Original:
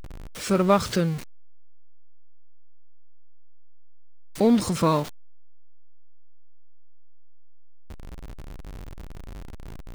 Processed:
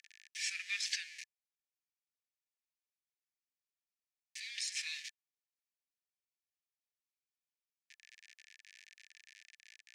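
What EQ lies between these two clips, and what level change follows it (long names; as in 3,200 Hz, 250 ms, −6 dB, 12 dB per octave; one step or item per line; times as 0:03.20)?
Chebyshev high-pass with heavy ripple 1,700 Hz, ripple 6 dB
low-pass filter 5,900 Hz 12 dB per octave
+1.5 dB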